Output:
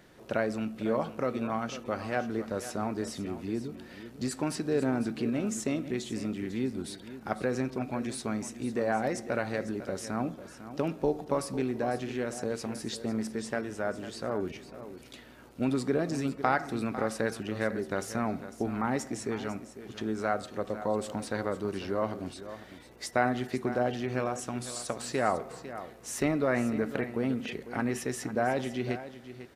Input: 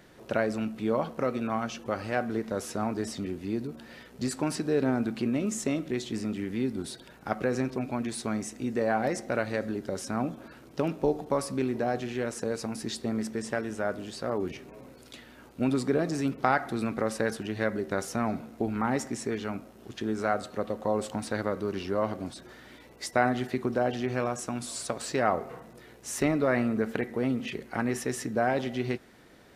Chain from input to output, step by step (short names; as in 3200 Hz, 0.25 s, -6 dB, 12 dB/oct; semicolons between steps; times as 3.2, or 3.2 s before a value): echo 0.5 s -13 dB; gain -2 dB